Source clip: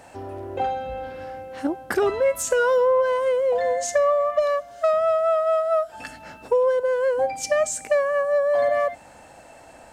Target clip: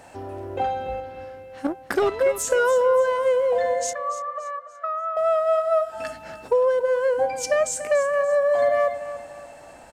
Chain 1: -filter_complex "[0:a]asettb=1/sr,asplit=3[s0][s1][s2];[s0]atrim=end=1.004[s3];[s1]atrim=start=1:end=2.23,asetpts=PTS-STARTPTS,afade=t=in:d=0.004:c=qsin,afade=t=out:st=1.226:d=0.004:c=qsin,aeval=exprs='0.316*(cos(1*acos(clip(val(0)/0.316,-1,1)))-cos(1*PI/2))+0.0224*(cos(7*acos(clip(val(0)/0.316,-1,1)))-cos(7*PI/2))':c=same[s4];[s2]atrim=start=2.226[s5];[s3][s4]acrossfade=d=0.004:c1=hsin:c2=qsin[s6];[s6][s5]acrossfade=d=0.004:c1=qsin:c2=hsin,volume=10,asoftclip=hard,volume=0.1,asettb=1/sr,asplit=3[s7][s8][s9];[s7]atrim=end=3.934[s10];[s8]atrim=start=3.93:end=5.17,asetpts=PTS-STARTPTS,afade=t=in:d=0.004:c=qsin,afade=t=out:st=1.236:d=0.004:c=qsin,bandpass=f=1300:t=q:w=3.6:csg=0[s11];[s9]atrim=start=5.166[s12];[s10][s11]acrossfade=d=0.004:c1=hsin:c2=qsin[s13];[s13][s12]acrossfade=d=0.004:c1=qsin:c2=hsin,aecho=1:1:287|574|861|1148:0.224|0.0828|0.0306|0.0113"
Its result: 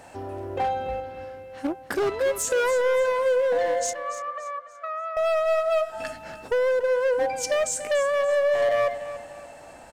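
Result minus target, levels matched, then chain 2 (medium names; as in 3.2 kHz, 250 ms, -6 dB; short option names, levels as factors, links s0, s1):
overload inside the chain: distortion +38 dB
-filter_complex "[0:a]asettb=1/sr,asplit=3[s0][s1][s2];[s0]atrim=end=1.004[s3];[s1]atrim=start=1:end=2.23,asetpts=PTS-STARTPTS,afade=t=in:d=0.004:c=qsin,afade=t=out:st=1.226:d=0.004:c=qsin,aeval=exprs='0.316*(cos(1*acos(clip(val(0)/0.316,-1,1)))-cos(1*PI/2))+0.0224*(cos(7*acos(clip(val(0)/0.316,-1,1)))-cos(7*PI/2))':c=same[s4];[s2]atrim=start=2.226[s5];[s3][s4]acrossfade=d=0.004:c1=hsin:c2=qsin[s6];[s6][s5]acrossfade=d=0.004:c1=qsin:c2=hsin,volume=3.76,asoftclip=hard,volume=0.266,asettb=1/sr,asplit=3[s7][s8][s9];[s7]atrim=end=3.934[s10];[s8]atrim=start=3.93:end=5.17,asetpts=PTS-STARTPTS,afade=t=in:d=0.004:c=qsin,afade=t=out:st=1.236:d=0.004:c=qsin,bandpass=f=1300:t=q:w=3.6:csg=0[s11];[s9]atrim=start=5.166[s12];[s10][s11]acrossfade=d=0.004:c1=hsin:c2=qsin[s13];[s13][s12]acrossfade=d=0.004:c1=qsin:c2=hsin,aecho=1:1:287|574|861|1148:0.224|0.0828|0.0306|0.0113"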